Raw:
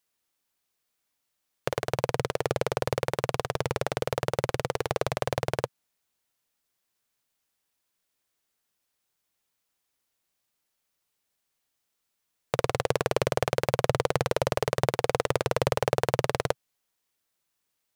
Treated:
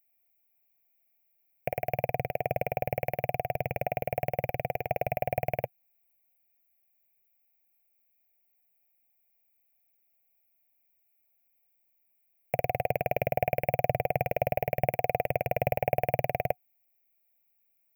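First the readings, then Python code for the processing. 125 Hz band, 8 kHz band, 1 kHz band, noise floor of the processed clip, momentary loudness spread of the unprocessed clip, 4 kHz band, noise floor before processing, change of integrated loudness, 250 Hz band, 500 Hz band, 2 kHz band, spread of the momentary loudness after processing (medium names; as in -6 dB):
-3.0 dB, under -20 dB, +0.5 dB, -72 dBFS, 5 LU, under -15 dB, -80 dBFS, -2.0 dB, -5.0 dB, -2.0 dB, -3.0 dB, 5 LU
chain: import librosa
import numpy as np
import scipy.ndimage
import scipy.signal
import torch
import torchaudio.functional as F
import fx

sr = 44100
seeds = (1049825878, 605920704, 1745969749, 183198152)

y = fx.curve_eq(x, sr, hz=(250.0, 390.0, 730.0, 1100.0, 2400.0, 3600.0, 5500.0, 9400.0, 14000.0), db=(0, -11, 10, -28, 8, -28, -17, -28, 15))
y = y * 10.0 ** (-3.0 / 20.0)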